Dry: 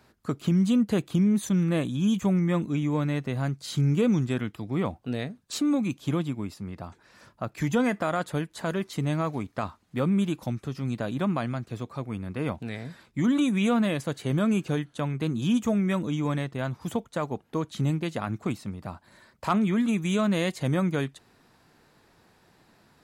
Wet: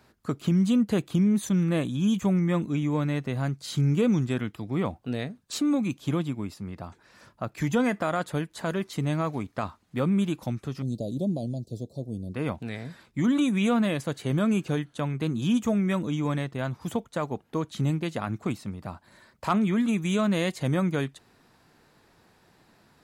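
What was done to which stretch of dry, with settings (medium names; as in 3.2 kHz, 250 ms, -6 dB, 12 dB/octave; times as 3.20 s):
10.82–12.34 s: Chebyshev band-stop 600–4200 Hz, order 3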